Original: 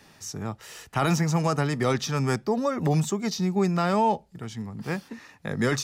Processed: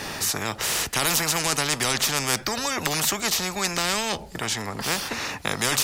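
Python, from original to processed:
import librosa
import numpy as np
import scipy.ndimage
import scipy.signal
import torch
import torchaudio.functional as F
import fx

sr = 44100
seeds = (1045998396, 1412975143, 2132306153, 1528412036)

y = fx.spectral_comp(x, sr, ratio=4.0)
y = F.gain(torch.from_numpy(y), 7.0).numpy()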